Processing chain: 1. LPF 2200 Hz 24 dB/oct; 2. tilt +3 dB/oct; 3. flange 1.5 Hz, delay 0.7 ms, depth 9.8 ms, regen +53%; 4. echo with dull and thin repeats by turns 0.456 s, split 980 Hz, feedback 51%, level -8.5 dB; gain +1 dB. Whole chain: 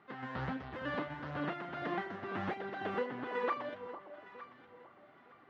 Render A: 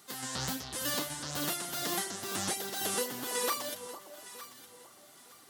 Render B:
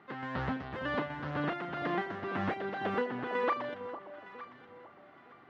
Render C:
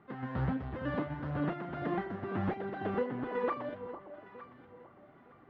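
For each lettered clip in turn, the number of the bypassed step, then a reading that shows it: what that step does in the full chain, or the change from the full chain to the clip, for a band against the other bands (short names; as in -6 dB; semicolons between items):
1, 4 kHz band +16.5 dB; 3, loudness change +4.0 LU; 2, 125 Hz band +8.5 dB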